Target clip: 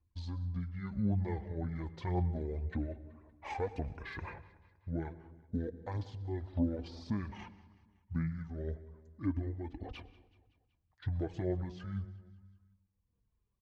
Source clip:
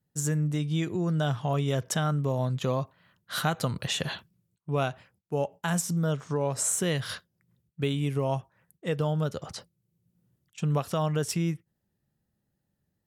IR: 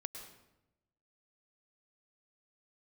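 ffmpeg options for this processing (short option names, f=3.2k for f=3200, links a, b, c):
-filter_complex "[0:a]deesser=0.6,aemphasis=mode=reproduction:type=50fm,asplit=2[a][b];[b]acompressor=threshold=-39dB:ratio=12,volume=1dB[c];[a][c]amix=inputs=2:normalize=0,aphaser=in_gain=1:out_gain=1:delay=1.5:decay=0.51:speed=1.9:type=sinusoidal,tremolo=f=0.93:d=0.48,asetrate=26990,aresample=44100,atempo=1.63392,flanger=delay=2.7:depth=3.8:regen=33:speed=0.33:shape=triangular,asetrate=42336,aresample=44100,aecho=1:1:188|376|564|752:0.0944|0.0538|0.0307|0.0175,asplit=2[d][e];[1:a]atrim=start_sample=2205,lowpass=6.1k,lowshelf=f=250:g=7.5[f];[e][f]afir=irnorm=-1:irlink=0,volume=-8.5dB[g];[d][g]amix=inputs=2:normalize=0,volume=-8.5dB"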